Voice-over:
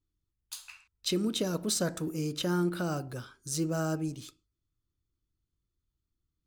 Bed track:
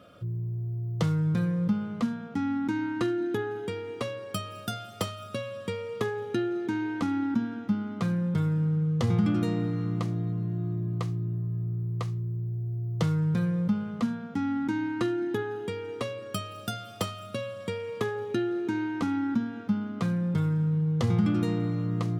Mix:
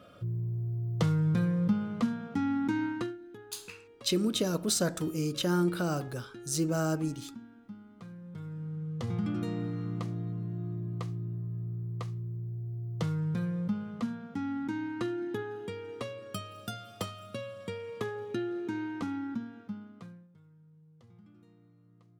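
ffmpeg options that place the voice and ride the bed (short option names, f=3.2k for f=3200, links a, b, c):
-filter_complex "[0:a]adelay=3000,volume=1.5dB[a];[1:a]volume=12.5dB,afade=t=out:st=2.85:d=0.33:silence=0.125893,afade=t=in:st=8.22:d=1.43:silence=0.211349,afade=t=out:st=18.91:d=1.37:silence=0.0421697[b];[a][b]amix=inputs=2:normalize=0"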